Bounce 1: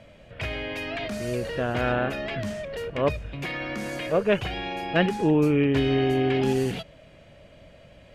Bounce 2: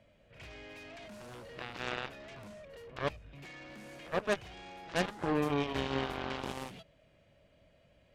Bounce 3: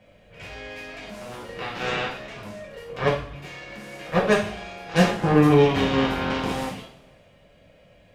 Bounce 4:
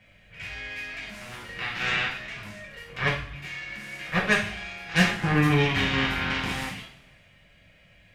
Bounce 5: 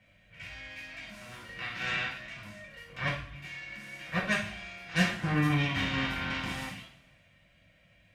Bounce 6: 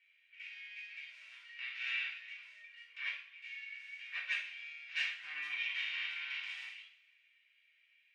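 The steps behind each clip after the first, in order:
reverse echo 70 ms -13 dB; Chebyshev shaper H 3 -21 dB, 5 -30 dB, 7 -14 dB, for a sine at -9 dBFS; trim -9 dB
dynamic bell 130 Hz, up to +8 dB, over -51 dBFS, Q 0.84; two-slope reverb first 0.47 s, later 1.6 s, from -19 dB, DRR -5.5 dB; trim +5 dB
graphic EQ 250/500/1000/2000 Hz -4/-11/-4/+7 dB
comb of notches 420 Hz; trim -5 dB
ladder band-pass 2.8 kHz, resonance 50%; trim +3 dB

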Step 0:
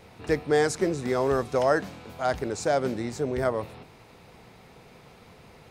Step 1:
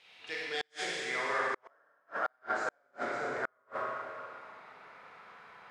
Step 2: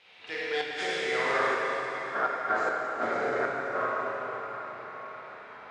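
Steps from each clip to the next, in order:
band-pass sweep 3.1 kHz -> 1.4 kHz, 0.68–1.65 s; Schroeder reverb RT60 2.3 s, combs from 31 ms, DRR -5.5 dB; inverted gate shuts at -22 dBFS, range -42 dB; trim +1.5 dB
chunks repeated in reverse 220 ms, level -11.5 dB; low-pass 3.2 kHz 6 dB/octave; plate-style reverb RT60 4.7 s, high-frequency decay 0.85×, DRR -0.5 dB; trim +4 dB

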